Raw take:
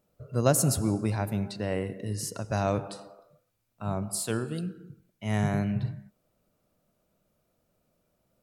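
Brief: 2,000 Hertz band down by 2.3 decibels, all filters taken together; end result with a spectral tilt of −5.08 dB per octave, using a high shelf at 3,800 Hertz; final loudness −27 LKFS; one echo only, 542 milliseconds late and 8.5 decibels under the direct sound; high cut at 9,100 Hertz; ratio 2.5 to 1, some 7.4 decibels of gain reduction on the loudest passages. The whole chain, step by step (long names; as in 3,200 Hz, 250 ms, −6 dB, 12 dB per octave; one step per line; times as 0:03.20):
low-pass filter 9,100 Hz
parametric band 2,000 Hz −4.5 dB
high-shelf EQ 3,800 Hz +5.5 dB
downward compressor 2.5 to 1, threshold −28 dBFS
single-tap delay 542 ms −8.5 dB
level +6.5 dB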